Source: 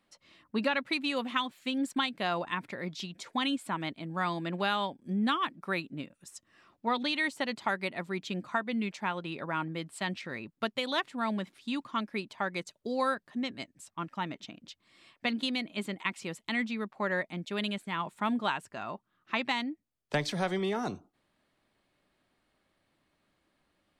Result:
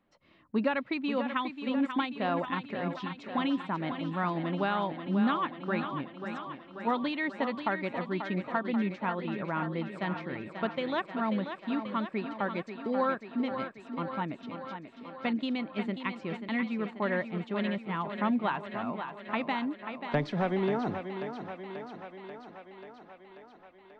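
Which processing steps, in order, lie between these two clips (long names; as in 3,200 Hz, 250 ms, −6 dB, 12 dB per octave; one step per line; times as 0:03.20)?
head-to-tape spacing loss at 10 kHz 35 dB
feedback echo with a high-pass in the loop 537 ms, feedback 70%, high-pass 160 Hz, level −8 dB
level +3.5 dB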